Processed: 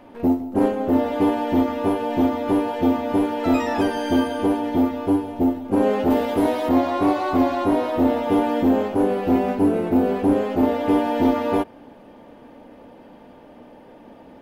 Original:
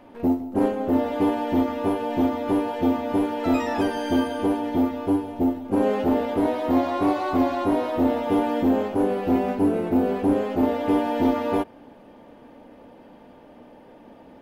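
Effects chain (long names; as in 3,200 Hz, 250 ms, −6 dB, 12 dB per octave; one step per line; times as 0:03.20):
0:06.10–0:06.69: high-shelf EQ 3,600 Hz +8 dB
level +2.5 dB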